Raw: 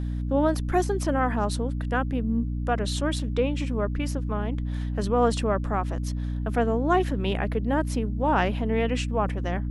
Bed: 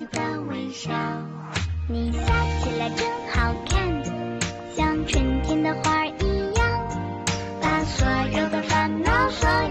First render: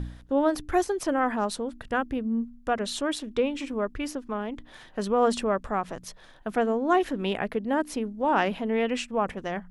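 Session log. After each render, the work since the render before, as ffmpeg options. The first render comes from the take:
-af "bandreject=f=60:t=h:w=4,bandreject=f=120:t=h:w=4,bandreject=f=180:t=h:w=4,bandreject=f=240:t=h:w=4,bandreject=f=300:t=h:w=4"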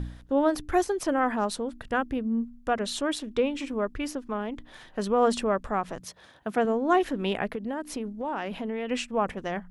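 -filter_complex "[0:a]asettb=1/sr,asplit=3[a][b][c];[a]atrim=end=6.004[d];[b]atrim=start=6:end=6.65,asetpts=PTS-STARTPTS,afade=t=in:d=0.004:c=qsin,afade=t=out:st=0.646:d=0.004:c=qsin,highpass=f=58:w=0.5412,highpass=f=58:w=1.3066[e];[c]atrim=start=6.646[f];[d][e]acrossfade=d=0.004:c1=hsin:c2=qsin[g];[g][f]acrossfade=d=0.004:c1=qsin:c2=hsin,asettb=1/sr,asplit=3[h][i][j];[h]atrim=end=7.544[k];[i]atrim=start=7.54:end=8.91,asetpts=PTS-STARTPTS,afade=t=in:d=0.004:c=qsin,afade=t=out:st=1.366:d=0.004:c=qsin,acompressor=threshold=-28dB:ratio=5:attack=3.2:release=140:knee=1:detection=peak[l];[j]atrim=start=8.906[m];[k][l]acrossfade=d=0.004:c1=hsin:c2=qsin[n];[n][m]acrossfade=d=0.004:c1=qsin:c2=hsin"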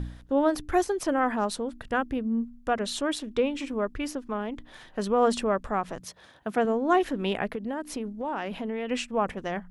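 -af anull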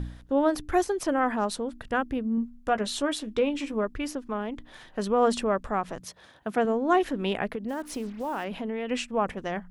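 -filter_complex "[0:a]asettb=1/sr,asplit=3[a][b][c];[a]atrim=end=2.364[d];[b]atrim=start=2.36:end=3.84,asetpts=PTS-STARTPTS,afade=t=in:d=0.004:c=qsin,afade=t=out:st=1.476:d=0.004:c=qsin,asplit=2[e][f];[f]adelay=14,volume=-9dB[g];[e][g]amix=inputs=2:normalize=0,atrim=end_sample=65268[h];[c]atrim=start=3.836[i];[d][h]acrossfade=d=0.004:c1=hsin:c2=qsin[j];[j][i]acrossfade=d=0.004:c1=qsin:c2=hsin,asplit=3[k][l][m];[k]afade=t=out:st=7.68:d=0.02[n];[l]acrusher=bits=7:mix=0:aa=0.5,afade=t=in:st=7.68:d=0.02,afade=t=out:st=8.43:d=0.02[o];[m]afade=t=in:st=8.43:d=0.02[p];[n][o][p]amix=inputs=3:normalize=0"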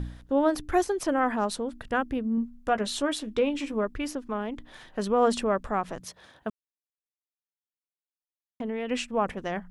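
-filter_complex "[0:a]asplit=3[a][b][c];[a]atrim=end=6.5,asetpts=PTS-STARTPTS,afade=t=out:st=6.496:d=0.004:c=hsin[d];[b]atrim=start=6.5:end=8.6,asetpts=PTS-STARTPTS,volume=0[e];[c]atrim=start=8.6,asetpts=PTS-STARTPTS,afade=t=in:d=0.004:c=hsin[f];[d][e][f]concat=n=3:v=0:a=1"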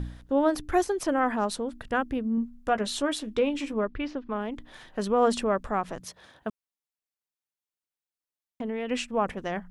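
-filter_complex "[0:a]asettb=1/sr,asplit=3[a][b][c];[a]atrim=end=3.734[d];[b]atrim=start=3.73:end=4.36,asetpts=PTS-STARTPTS,afade=t=in:d=0.004:c=qsin,afade=t=out:st=0.626:d=0.004:c=qsin,lowpass=f=4.1k:w=0.5412,lowpass=f=4.1k:w=1.3066[e];[c]atrim=start=4.356[f];[d][e]acrossfade=d=0.004:c1=hsin:c2=qsin[g];[g][f]acrossfade=d=0.004:c1=qsin:c2=hsin"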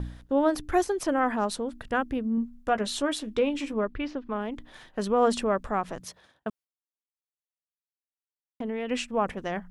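-af "agate=range=-33dB:threshold=-46dB:ratio=3:detection=peak"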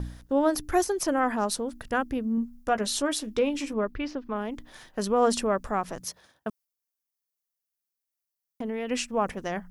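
-af "aexciter=amount=1.8:drive=7:freq=4.8k"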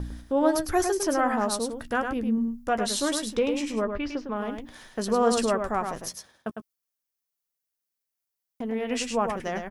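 -filter_complex "[0:a]asplit=2[a][b];[b]adelay=13,volume=-12dB[c];[a][c]amix=inputs=2:normalize=0,aecho=1:1:104:0.501"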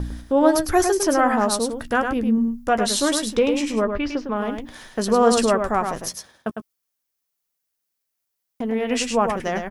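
-af "volume=6dB"

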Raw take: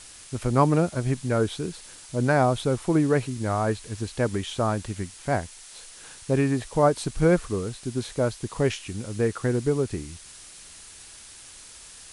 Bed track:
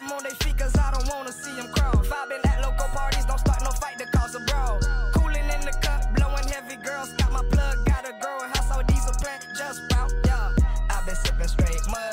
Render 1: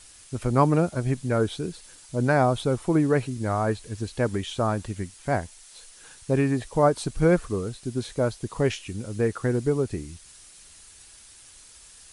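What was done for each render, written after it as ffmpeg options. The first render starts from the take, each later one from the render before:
-af "afftdn=nr=6:nf=-46"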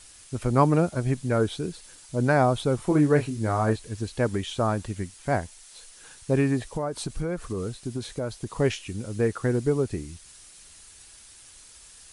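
-filter_complex "[0:a]asettb=1/sr,asplit=3[a][b][c];[a]atrim=end=2.764[d];[b]atrim=start=2.76:end=3.76,asetpts=PTS-STARTPTS,afade=t=in:d=0.004:c=qsin,afade=t=out:st=0.996:d=0.004:c=qsin,asplit=2[e][f];[f]adelay=27,volume=-7.5dB[g];[e][g]amix=inputs=2:normalize=0,atrim=end_sample=44100[h];[c]atrim=start=3.756[i];[d][h]acrossfade=d=0.004:c1=hsin:c2=qsin[j];[j][i]acrossfade=d=0.004:c1=qsin:c2=hsin,asettb=1/sr,asplit=3[k][l][m];[k]atrim=end=6.724[n];[l]atrim=start=6.72:end=8.52,asetpts=PTS-STARTPTS,afade=t=in:d=0.004:c=qsin,afade=t=out:st=1.796:d=0.004:c=qsin,acompressor=threshold=-25dB:ratio=6:attack=3.2:release=140:knee=1:detection=peak[o];[m]atrim=start=8.516[p];[n][o]acrossfade=d=0.004:c1=hsin:c2=qsin[q];[q][p]acrossfade=d=0.004:c1=qsin:c2=hsin"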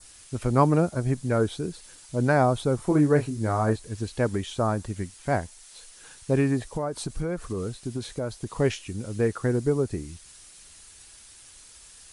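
-af "adynamicequalizer=threshold=0.00398:dfrequency=2800:dqfactor=1.2:tfrequency=2800:tqfactor=1.2:attack=5:release=100:ratio=0.375:range=3.5:mode=cutabove:tftype=bell"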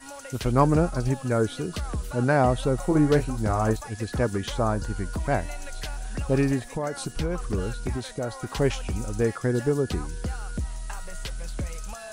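-filter_complex "[1:a]volume=-10dB[a];[0:a][a]amix=inputs=2:normalize=0"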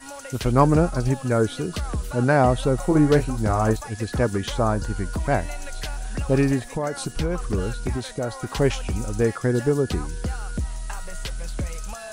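-af "volume=3dB"

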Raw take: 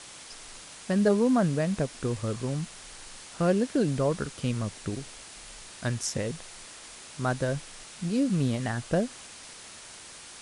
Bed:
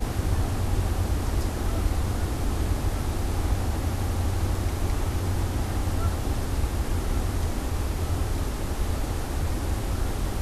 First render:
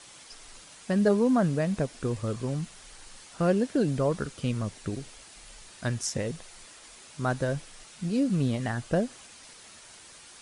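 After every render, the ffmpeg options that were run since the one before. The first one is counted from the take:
-af "afftdn=nr=6:nf=-47"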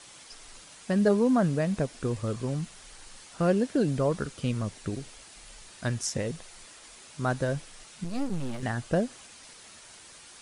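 -filter_complex "[0:a]asettb=1/sr,asplit=3[a][b][c];[a]atrim=end=8.044[d];[b]atrim=start=8.04:end=8.63,asetpts=PTS-STARTPTS,afade=t=in:d=0.004:c=qsin,afade=t=out:st=0.586:d=0.004:c=qsin,aeval=exprs='max(val(0),0)':c=same[e];[c]atrim=start=8.626[f];[d][e]acrossfade=d=0.004:c1=hsin:c2=qsin[g];[g][f]acrossfade=d=0.004:c1=qsin:c2=hsin"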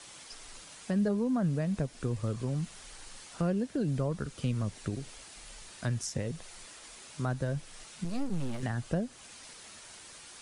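-filter_complex "[0:a]acrossover=split=190[a][b];[b]acompressor=threshold=-39dB:ratio=2[c];[a][c]amix=inputs=2:normalize=0"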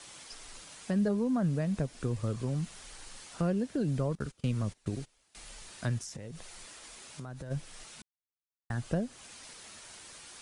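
-filter_complex "[0:a]asettb=1/sr,asplit=3[a][b][c];[a]atrim=end=4.154[d];[b]atrim=start=4.15:end=5.35,asetpts=PTS-STARTPTS,afade=t=in:d=0.004:c=qsin,afade=t=out:st=1.196:d=0.004:c=qsin,agate=range=-21dB:threshold=-43dB:ratio=16:release=100:detection=peak[e];[c]atrim=start=5.346[f];[d][e]acrossfade=d=0.004:c1=hsin:c2=qsin[g];[g][f]acrossfade=d=0.004:c1=qsin:c2=hsin,asplit=3[h][i][j];[h]afade=t=out:st=5.98:d=0.02[k];[i]acompressor=threshold=-38dB:ratio=12:attack=3.2:release=140:knee=1:detection=peak,afade=t=in:st=5.98:d=0.02,afade=t=out:st=7.5:d=0.02[l];[j]afade=t=in:st=7.5:d=0.02[m];[k][l][m]amix=inputs=3:normalize=0,asplit=3[n][o][p];[n]atrim=end=8.02,asetpts=PTS-STARTPTS,afade=t=out:st=8.016:d=0.004:c=hsin[q];[o]atrim=start=8.02:end=8.7,asetpts=PTS-STARTPTS,volume=0[r];[p]atrim=start=8.7,asetpts=PTS-STARTPTS,afade=t=in:d=0.004:c=hsin[s];[q][r][s]concat=n=3:v=0:a=1"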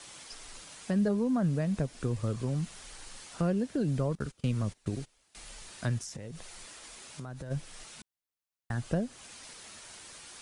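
-af "volume=1dB"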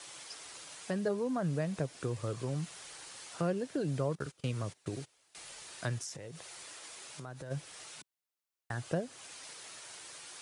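-af "highpass=140,equalizer=f=220:t=o:w=0.46:g=-11.5"

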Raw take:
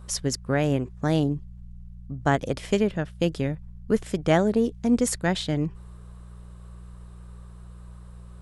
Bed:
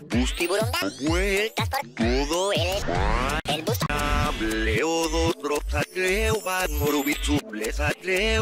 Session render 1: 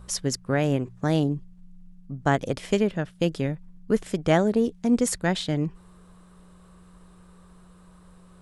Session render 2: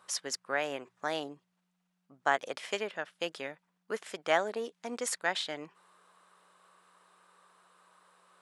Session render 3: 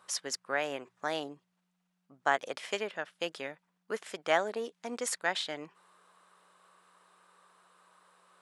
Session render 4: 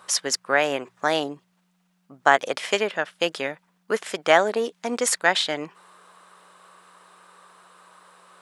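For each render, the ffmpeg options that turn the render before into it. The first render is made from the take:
-af "bandreject=f=60:t=h:w=4,bandreject=f=120:t=h:w=4"
-af "highpass=840,highshelf=f=4.9k:g=-8"
-af anull
-af "volume=11.5dB,alimiter=limit=-2dB:level=0:latency=1"

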